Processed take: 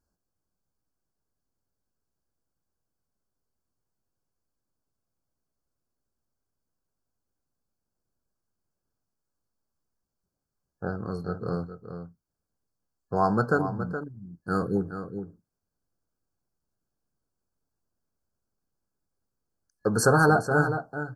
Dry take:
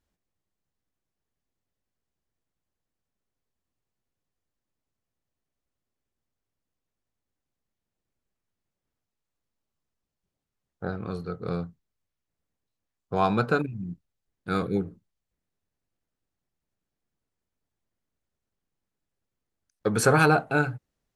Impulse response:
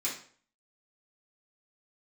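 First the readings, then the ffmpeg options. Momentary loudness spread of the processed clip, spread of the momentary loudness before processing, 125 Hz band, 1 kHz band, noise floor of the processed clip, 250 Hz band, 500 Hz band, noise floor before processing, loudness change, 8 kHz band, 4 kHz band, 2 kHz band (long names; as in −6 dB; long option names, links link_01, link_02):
20 LU, 19 LU, +0.5 dB, +0.5 dB, −85 dBFS, +0.5 dB, +0.5 dB, below −85 dBFS, 0.0 dB, can't be measured, −3.5 dB, 0.0 dB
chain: -filter_complex "[0:a]acontrast=21,afftfilt=real='re*(1-between(b*sr/4096,1700,4200))':imag='im*(1-between(b*sr/4096,1700,4200))':win_size=4096:overlap=0.75,asplit=2[link_01][link_02];[link_02]adelay=419.8,volume=-9dB,highshelf=frequency=4000:gain=-9.45[link_03];[link_01][link_03]amix=inputs=2:normalize=0,volume=-4.5dB"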